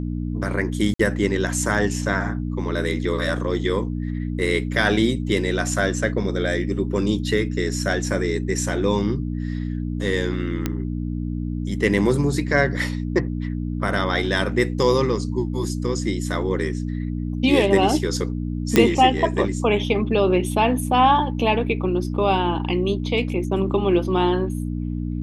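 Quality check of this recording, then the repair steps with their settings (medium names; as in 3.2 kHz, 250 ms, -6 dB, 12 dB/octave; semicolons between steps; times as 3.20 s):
hum 60 Hz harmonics 5 -26 dBFS
0.94–0.99 s: dropout 54 ms
10.66 s: pop -9 dBFS
18.76 s: pop -2 dBFS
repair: de-click; de-hum 60 Hz, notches 5; interpolate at 0.94 s, 54 ms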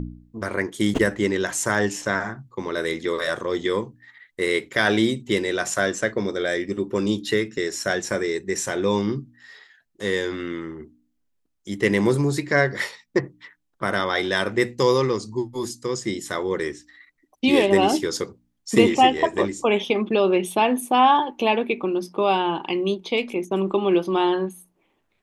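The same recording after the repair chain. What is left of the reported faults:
nothing left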